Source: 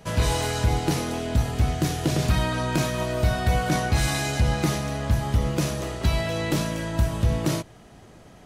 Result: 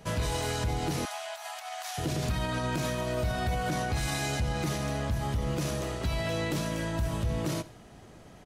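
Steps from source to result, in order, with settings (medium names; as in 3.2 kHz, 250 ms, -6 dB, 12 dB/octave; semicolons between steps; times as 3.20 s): on a send: feedback delay 69 ms, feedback 46%, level -21.5 dB; on the sum: peak limiter -19.5 dBFS, peak gain reduction 8 dB; 1.05–1.98 s: steep high-pass 640 Hz 72 dB/octave; trim -2.5 dB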